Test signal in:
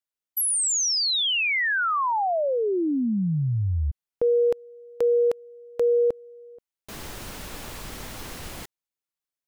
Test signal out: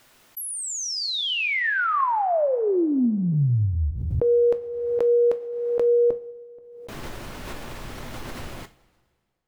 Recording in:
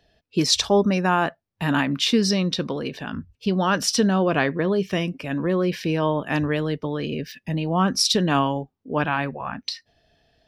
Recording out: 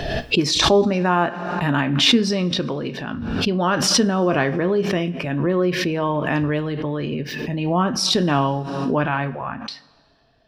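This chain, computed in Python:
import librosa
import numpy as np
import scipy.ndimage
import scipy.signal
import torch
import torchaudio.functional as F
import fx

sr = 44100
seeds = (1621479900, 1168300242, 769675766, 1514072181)

y = fx.high_shelf(x, sr, hz=3900.0, db=-11.0)
y = fx.rev_double_slope(y, sr, seeds[0], early_s=0.3, late_s=1.9, knee_db=-18, drr_db=9.0)
y = fx.pre_swell(y, sr, db_per_s=35.0)
y = F.gain(torch.from_numpy(y), 1.5).numpy()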